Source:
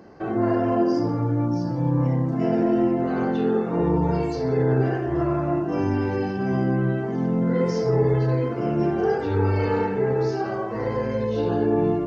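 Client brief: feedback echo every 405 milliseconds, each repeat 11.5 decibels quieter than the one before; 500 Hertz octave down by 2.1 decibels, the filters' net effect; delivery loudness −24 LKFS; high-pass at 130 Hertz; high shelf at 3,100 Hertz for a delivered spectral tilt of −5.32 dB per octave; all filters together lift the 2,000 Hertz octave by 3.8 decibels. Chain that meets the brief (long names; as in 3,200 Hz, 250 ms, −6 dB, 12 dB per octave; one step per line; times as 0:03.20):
high-pass filter 130 Hz
parametric band 500 Hz −3 dB
parametric band 2,000 Hz +4 dB
high-shelf EQ 3,100 Hz +4 dB
repeating echo 405 ms, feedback 27%, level −11.5 dB
level +0.5 dB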